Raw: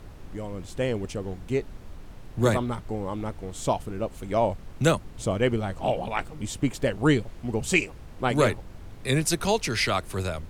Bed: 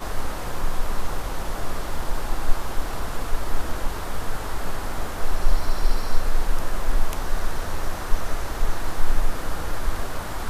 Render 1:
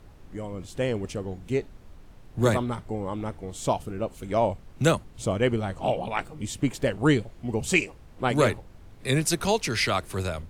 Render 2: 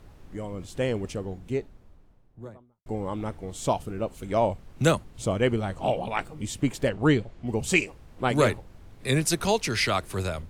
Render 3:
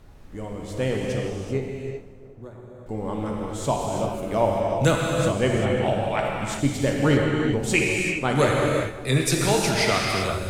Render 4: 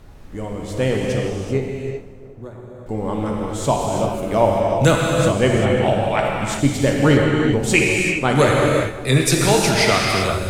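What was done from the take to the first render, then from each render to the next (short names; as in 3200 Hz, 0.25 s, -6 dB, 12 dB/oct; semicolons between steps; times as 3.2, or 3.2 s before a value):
noise print and reduce 6 dB
0.97–2.86 studio fade out; 6.89–7.47 air absorption 73 m
split-band echo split 1400 Hz, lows 0.362 s, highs 0.153 s, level -16 dB; non-linear reverb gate 0.42 s flat, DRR -1.5 dB
gain +5.5 dB; limiter -2 dBFS, peak gain reduction 1.5 dB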